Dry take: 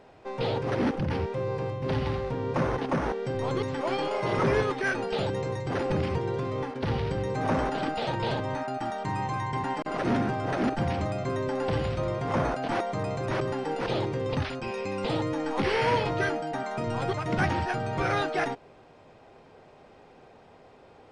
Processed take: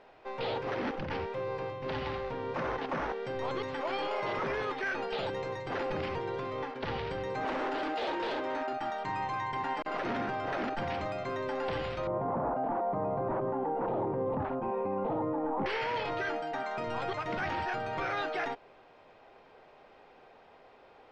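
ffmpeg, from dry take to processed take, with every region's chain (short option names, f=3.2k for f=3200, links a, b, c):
-filter_complex "[0:a]asettb=1/sr,asplit=3[a][b][c];[a]atrim=end=7.454[d];[b]atrim=start=7.45:end=8.73,asetpts=PTS-STARTPTS,afade=t=in:d=0.004:c=qsin,afade=t=out:st=1.276:d=0.004:c=qsin,highpass=f=310:t=q:w=2.6,volume=25.5dB,asoftclip=hard,volume=-25.5dB[e];[c]atrim=start=8.726[f];[d][e]acrossfade=d=0.004:c1=hsin:c2=qsin[g];[g][f]acrossfade=d=0.004:c1=qsin:c2=hsin,asettb=1/sr,asplit=3[h][i][j];[h]atrim=end=12.074[k];[i]atrim=start=12.07:end=15.66,asetpts=PTS-STARTPTS,afade=t=in:d=0.004:c=qsin,afade=t=out:st=3.586:d=0.004:c=qsin,lowpass=f=900:t=q:w=2.1,equalizer=f=200:w=0.7:g=10.5[l];[j]atrim=start=15.656[m];[k][l]acrossfade=d=0.004:c1=hsin:c2=qsin[n];[n][m]acrossfade=d=0.004:c1=qsin:c2=hsin,equalizer=f=110:w=0.36:g=-13,alimiter=level_in=1dB:limit=-24dB:level=0:latency=1:release=15,volume=-1dB,lowpass=4.1k"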